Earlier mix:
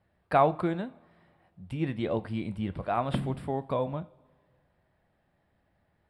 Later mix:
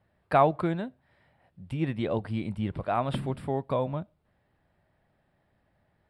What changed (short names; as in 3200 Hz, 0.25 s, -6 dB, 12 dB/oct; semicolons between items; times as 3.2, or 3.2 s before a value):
speech +4.0 dB; reverb: off